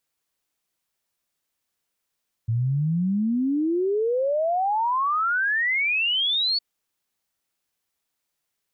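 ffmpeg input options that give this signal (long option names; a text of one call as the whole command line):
ffmpeg -f lavfi -i "aevalsrc='0.1*clip(min(t,4.11-t)/0.01,0,1)*sin(2*PI*110*4.11/log(4500/110)*(exp(log(4500/110)*t/4.11)-1))':duration=4.11:sample_rate=44100" out.wav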